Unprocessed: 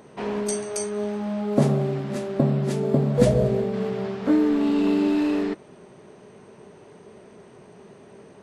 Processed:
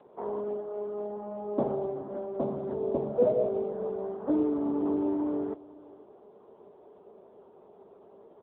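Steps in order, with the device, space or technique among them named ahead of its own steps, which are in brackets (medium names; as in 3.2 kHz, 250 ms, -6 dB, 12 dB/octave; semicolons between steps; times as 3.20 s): low-pass 1.1 kHz 24 dB/octave; 3.35–3.79 s: high-pass 79 Hz -> 200 Hz 6 dB/octave; satellite phone (band-pass 390–3200 Hz; delay 494 ms -21.5 dB; trim -1.5 dB; AMR-NB 6.7 kbps 8 kHz)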